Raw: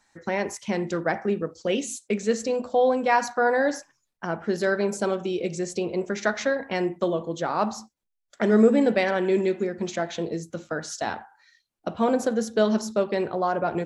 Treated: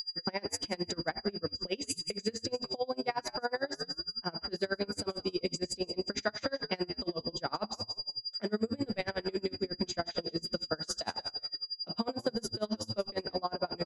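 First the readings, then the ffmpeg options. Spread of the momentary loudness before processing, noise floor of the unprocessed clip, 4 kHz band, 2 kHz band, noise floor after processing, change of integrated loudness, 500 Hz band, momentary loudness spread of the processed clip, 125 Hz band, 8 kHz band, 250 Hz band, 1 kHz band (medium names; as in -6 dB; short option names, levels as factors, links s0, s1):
10 LU, -79 dBFS, +5.0 dB, -11.5 dB, -60 dBFS, -10.0 dB, -12.5 dB, 2 LU, -9.0 dB, -6.0 dB, -12.0 dB, -12.5 dB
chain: -filter_complex "[0:a]asplit=2[s0][s1];[s1]asplit=3[s2][s3][s4];[s2]adelay=175,afreqshift=-110,volume=0.211[s5];[s3]adelay=350,afreqshift=-220,volume=0.0716[s6];[s4]adelay=525,afreqshift=-330,volume=0.0245[s7];[s5][s6][s7]amix=inputs=3:normalize=0[s8];[s0][s8]amix=inputs=2:normalize=0,aeval=exprs='val(0)+0.0251*sin(2*PI*4800*n/s)':c=same,highshelf=f=7600:g=6.5,acompressor=threshold=0.0562:ratio=6,aeval=exprs='val(0)*pow(10,-29*(0.5-0.5*cos(2*PI*11*n/s))/20)':c=same"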